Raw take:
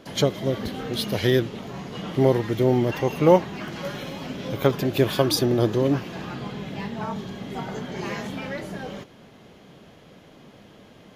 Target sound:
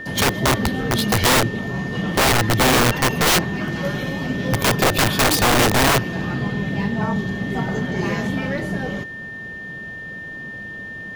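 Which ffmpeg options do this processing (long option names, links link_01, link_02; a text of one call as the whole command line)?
ffmpeg -i in.wav -af "lowshelf=frequency=290:gain=9,aeval=exprs='(mod(5.62*val(0)+1,2)-1)/5.62':channel_layout=same,aeval=exprs='val(0)+0.0178*sin(2*PI*1800*n/s)':channel_layout=same,volume=4dB" out.wav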